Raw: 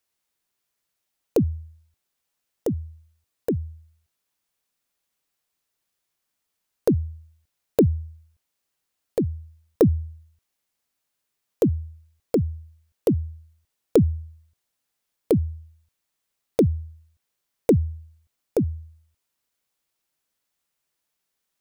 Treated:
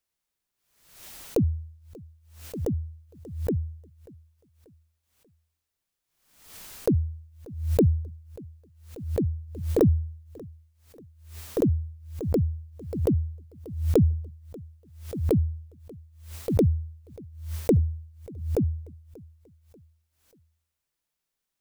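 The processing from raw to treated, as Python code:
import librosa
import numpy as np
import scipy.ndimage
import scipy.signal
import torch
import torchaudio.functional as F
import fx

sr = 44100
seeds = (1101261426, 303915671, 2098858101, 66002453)

y = fx.low_shelf(x, sr, hz=110.0, db=9.5)
y = fx.echo_feedback(y, sr, ms=587, feedback_pct=42, wet_db=-23.0)
y = fx.pre_swell(y, sr, db_per_s=77.0)
y = y * 10.0 ** (-5.0 / 20.0)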